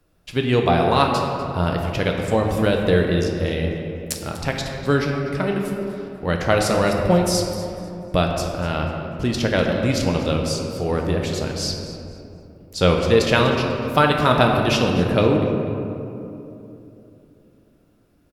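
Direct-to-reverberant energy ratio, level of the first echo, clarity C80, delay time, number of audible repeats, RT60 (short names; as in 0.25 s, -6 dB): 1.0 dB, -15.5 dB, 3.5 dB, 0.246 s, 1, 3.0 s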